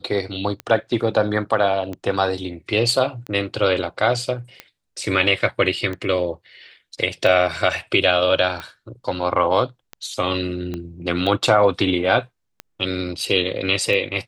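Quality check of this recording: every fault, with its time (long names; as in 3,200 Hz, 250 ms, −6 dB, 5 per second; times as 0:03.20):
scratch tick 45 rpm −16 dBFS
0:10.74: click −16 dBFS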